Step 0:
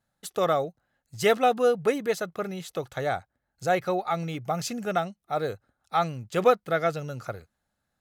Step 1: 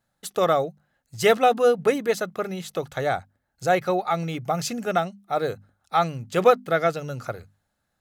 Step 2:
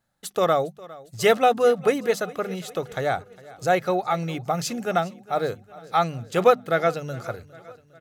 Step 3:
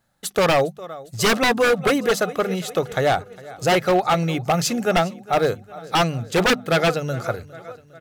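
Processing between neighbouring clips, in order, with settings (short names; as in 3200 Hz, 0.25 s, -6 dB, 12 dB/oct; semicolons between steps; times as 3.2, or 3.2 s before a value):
notches 50/100/150/200/250 Hz; gain +3.5 dB
feedback echo 0.407 s, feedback 56%, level -20.5 dB
wavefolder -17.5 dBFS; gain +6.5 dB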